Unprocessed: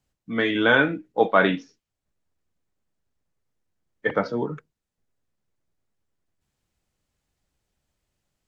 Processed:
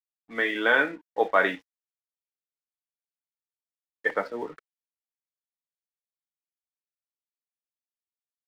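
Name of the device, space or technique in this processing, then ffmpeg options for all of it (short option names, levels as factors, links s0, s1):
pocket radio on a weak battery: -af "highpass=380,lowpass=3500,aeval=exprs='sgn(val(0))*max(abs(val(0))-0.00376,0)':c=same,equalizer=f=1900:t=o:w=0.26:g=7,volume=0.708"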